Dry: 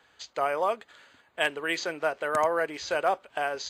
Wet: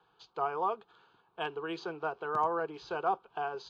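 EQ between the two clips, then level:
high-frequency loss of the air 270 metres
high-shelf EQ 9,900 Hz −8 dB
phaser with its sweep stopped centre 390 Hz, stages 8
0.0 dB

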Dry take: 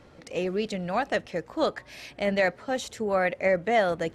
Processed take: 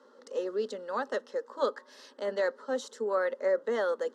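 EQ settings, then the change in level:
elliptic high-pass filter 250 Hz, stop band 40 dB
high-frequency loss of the air 58 metres
phaser with its sweep stopped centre 470 Hz, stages 8
0.0 dB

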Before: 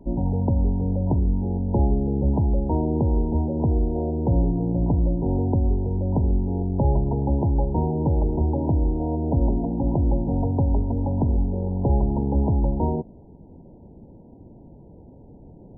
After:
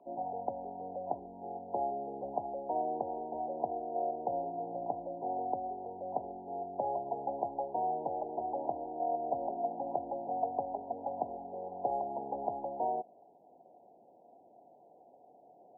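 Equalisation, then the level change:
formant filter a
high-pass filter 520 Hz 6 dB per octave
+7.5 dB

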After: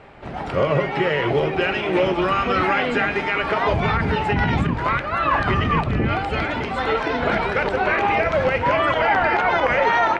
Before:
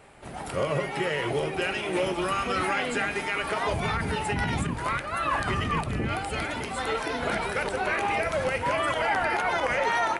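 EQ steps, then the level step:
high-frequency loss of the air 200 metres
+8.5 dB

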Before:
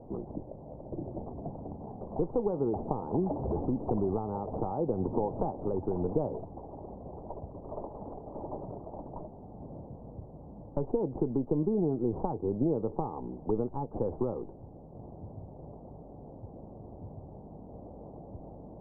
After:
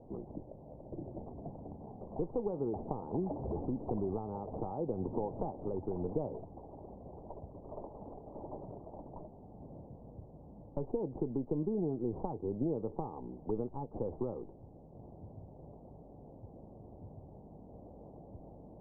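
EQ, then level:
low-pass filter 1,200 Hz 12 dB per octave
−5.5 dB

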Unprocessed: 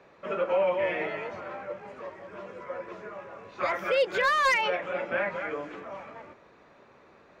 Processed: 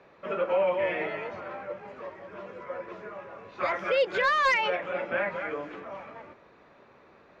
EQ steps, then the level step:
low-pass filter 5,400 Hz 12 dB per octave
0.0 dB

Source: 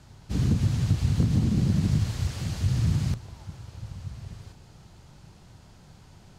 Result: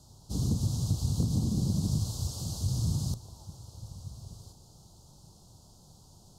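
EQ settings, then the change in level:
Chebyshev band-stop filter 940–4,300 Hz, order 2
high-shelf EQ 4,500 Hz +12 dB
−4.5 dB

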